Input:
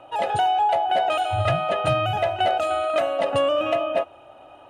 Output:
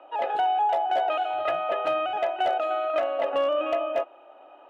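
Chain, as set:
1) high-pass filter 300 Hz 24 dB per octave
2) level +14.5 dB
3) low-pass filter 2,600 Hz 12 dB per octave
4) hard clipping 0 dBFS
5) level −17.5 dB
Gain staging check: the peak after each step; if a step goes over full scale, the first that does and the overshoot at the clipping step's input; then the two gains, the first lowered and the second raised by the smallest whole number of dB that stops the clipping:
−10.0, +4.5, +4.0, 0.0, −17.5 dBFS
step 2, 4.0 dB
step 2 +10.5 dB, step 5 −13.5 dB

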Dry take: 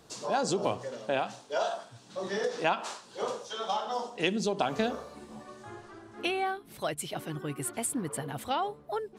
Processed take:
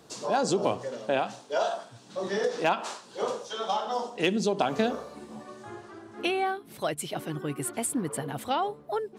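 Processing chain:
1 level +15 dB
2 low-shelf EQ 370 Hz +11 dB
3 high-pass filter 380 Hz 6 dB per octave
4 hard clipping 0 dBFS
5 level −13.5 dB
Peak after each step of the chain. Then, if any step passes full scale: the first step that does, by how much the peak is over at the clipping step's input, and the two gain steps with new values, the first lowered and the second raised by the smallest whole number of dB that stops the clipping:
+3.0, +5.0, +3.5, 0.0, −13.5 dBFS
step 1, 3.5 dB
step 1 +11 dB, step 5 −9.5 dB

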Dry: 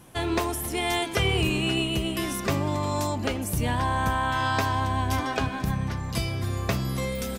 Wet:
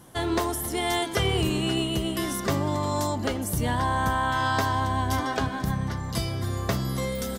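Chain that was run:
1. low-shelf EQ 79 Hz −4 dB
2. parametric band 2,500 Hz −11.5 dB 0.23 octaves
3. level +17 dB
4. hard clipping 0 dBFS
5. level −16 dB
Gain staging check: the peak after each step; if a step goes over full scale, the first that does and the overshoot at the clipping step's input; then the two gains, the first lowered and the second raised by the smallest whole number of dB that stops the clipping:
−13.0, −12.5, +4.5, 0.0, −16.0 dBFS
step 3, 4.5 dB
step 3 +12 dB, step 5 −11 dB

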